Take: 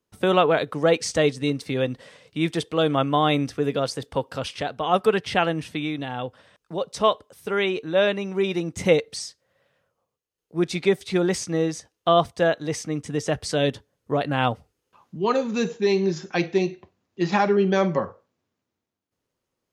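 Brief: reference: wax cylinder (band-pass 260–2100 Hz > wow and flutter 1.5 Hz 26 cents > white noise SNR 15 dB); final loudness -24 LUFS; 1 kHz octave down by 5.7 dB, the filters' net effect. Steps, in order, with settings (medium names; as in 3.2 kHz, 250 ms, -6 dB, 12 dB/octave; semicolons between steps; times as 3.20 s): band-pass 260–2100 Hz; peaking EQ 1 kHz -8 dB; wow and flutter 1.5 Hz 26 cents; white noise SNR 15 dB; trim +3 dB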